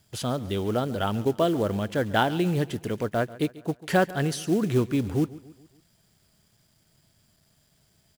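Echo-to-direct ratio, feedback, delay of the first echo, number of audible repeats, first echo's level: -18.0 dB, 49%, 0.14 s, 3, -19.0 dB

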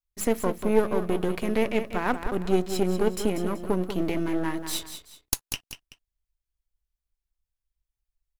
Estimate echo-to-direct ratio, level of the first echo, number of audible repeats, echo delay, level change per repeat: -9.0 dB, -9.5 dB, 2, 0.19 s, -9.5 dB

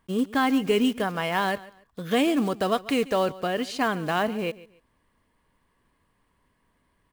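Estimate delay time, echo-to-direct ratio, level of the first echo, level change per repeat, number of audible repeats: 0.142 s, -18.5 dB, -19.0 dB, -11.5 dB, 2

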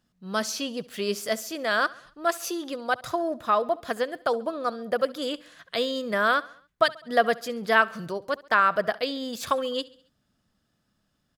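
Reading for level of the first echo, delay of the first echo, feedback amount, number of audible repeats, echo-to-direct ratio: -21.0 dB, 68 ms, 51%, 3, -19.5 dB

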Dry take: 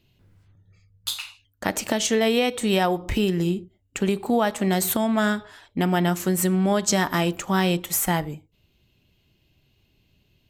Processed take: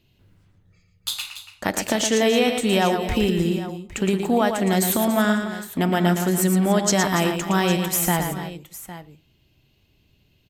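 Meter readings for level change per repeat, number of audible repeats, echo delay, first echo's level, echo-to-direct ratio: no steady repeat, 3, 0.114 s, -6.5 dB, -5.0 dB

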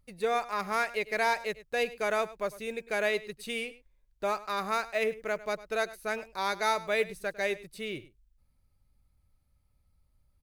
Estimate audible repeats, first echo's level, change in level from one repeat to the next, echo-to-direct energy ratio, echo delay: 1, -17.5 dB, no steady repeat, -17.5 dB, 0.102 s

